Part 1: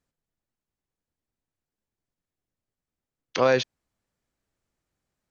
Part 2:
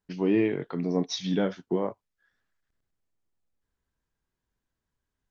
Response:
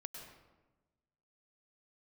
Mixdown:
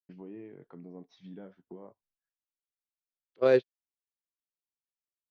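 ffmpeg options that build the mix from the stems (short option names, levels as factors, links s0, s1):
-filter_complex "[0:a]equalizer=f=400:t=o:w=0.67:g=11,equalizer=f=1000:t=o:w=0.67:g=-5,equalizer=f=4000:t=o:w=0.67:g=9,agate=range=0.0224:threshold=0.2:ratio=16:detection=peak,volume=0.631[s0];[1:a]agate=range=0.0224:threshold=0.00141:ratio=3:detection=peak,acompressor=threshold=0.00891:ratio=2.5,volume=0.398[s1];[s0][s1]amix=inputs=2:normalize=0,adynamicsmooth=sensitivity=0.5:basefreq=2100"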